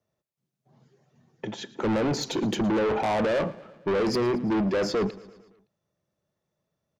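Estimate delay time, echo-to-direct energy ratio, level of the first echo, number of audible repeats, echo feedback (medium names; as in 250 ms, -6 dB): 113 ms, -18.0 dB, -20.0 dB, 4, 60%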